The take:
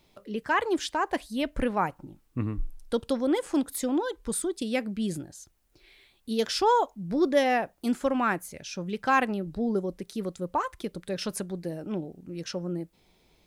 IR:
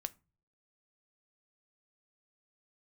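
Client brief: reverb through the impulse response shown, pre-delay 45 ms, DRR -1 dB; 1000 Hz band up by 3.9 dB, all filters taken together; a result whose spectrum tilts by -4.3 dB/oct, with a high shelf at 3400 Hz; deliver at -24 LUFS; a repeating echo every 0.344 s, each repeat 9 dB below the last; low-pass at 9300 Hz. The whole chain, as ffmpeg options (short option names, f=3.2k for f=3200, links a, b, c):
-filter_complex "[0:a]lowpass=9.3k,equalizer=f=1k:t=o:g=5,highshelf=f=3.4k:g=-4.5,aecho=1:1:344|688|1032|1376:0.355|0.124|0.0435|0.0152,asplit=2[a][b];[1:a]atrim=start_sample=2205,adelay=45[c];[b][c]afir=irnorm=-1:irlink=0,volume=3dB[d];[a][d]amix=inputs=2:normalize=0,volume=-0.5dB"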